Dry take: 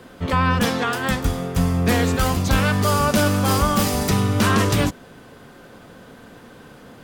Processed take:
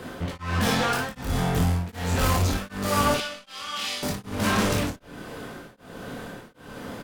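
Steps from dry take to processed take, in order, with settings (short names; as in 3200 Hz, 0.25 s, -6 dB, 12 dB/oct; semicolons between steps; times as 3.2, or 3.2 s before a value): limiter -15.5 dBFS, peak gain reduction 7 dB; 3.14–4.03 band-pass 3100 Hz, Q 1.9; hard clip -26.5 dBFS, distortion -8 dB; early reflections 24 ms -3.5 dB, 56 ms -3.5 dB; on a send at -17 dB: reverb RT60 0.40 s, pre-delay 0.19 s; on the sum: beating tremolo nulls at 1.3 Hz; gain +4.5 dB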